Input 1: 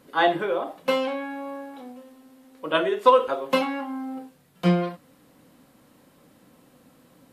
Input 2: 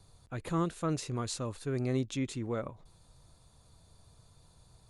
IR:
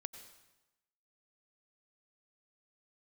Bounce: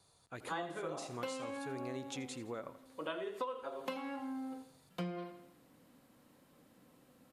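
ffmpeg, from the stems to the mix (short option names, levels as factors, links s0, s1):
-filter_complex "[0:a]adelay=350,volume=0.355,asplit=2[s0][s1];[s1]volume=0.188[s2];[1:a]highpass=f=430:p=1,volume=0.75,asplit=2[s3][s4];[s4]volume=0.168[s5];[s2][s5]amix=inputs=2:normalize=0,aecho=0:1:83|166|249|332|415|498:1|0.44|0.194|0.0852|0.0375|0.0165[s6];[s0][s3][s6]amix=inputs=3:normalize=0,acompressor=threshold=0.0126:ratio=5"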